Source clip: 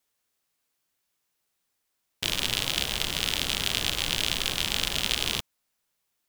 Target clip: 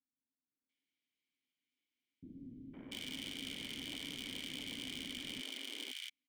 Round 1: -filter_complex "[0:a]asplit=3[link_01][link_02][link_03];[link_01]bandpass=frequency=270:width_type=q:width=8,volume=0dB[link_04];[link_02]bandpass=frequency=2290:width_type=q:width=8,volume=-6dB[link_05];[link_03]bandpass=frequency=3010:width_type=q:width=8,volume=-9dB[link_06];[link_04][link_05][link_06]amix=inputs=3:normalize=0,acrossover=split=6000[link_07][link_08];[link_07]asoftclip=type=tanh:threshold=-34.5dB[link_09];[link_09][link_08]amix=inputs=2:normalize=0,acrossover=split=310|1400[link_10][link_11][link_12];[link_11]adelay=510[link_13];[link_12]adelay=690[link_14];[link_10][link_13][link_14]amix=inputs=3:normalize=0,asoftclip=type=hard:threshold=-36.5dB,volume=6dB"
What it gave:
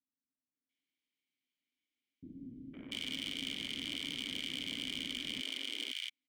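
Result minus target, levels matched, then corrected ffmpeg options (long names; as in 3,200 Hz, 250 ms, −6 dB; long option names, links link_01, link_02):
soft clipping: distortion −7 dB
-filter_complex "[0:a]asplit=3[link_01][link_02][link_03];[link_01]bandpass=frequency=270:width_type=q:width=8,volume=0dB[link_04];[link_02]bandpass=frequency=2290:width_type=q:width=8,volume=-6dB[link_05];[link_03]bandpass=frequency=3010:width_type=q:width=8,volume=-9dB[link_06];[link_04][link_05][link_06]amix=inputs=3:normalize=0,acrossover=split=6000[link_07][link_08];[link_07]asoftclip=type=tanh:threshold=-46dB[link_09];[link_09][link_08]amix=inputs=2:normalize=0,acrossover=split=310|1400[link_10][link_11][link_12];[link_11]adelay=510[link_13];[link_12]adelay=690[link_14];[link_10][link_13][link_14]amix=inputs=3:normalize=0,asoftclip=type=hard:threshold=-36.5dB,volume=6dB"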